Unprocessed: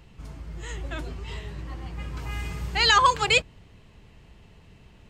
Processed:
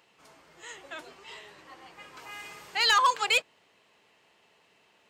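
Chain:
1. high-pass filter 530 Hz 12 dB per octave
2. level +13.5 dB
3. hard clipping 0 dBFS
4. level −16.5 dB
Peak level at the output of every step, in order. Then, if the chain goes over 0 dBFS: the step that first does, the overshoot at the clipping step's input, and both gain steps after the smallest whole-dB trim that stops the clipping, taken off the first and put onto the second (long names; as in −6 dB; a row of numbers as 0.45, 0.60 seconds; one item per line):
−7.5, +6.0, 0.0, −16.5 dBFS
step 2, 6.0 dB
step 2 +7.5 dB, step 4 −10.5 dB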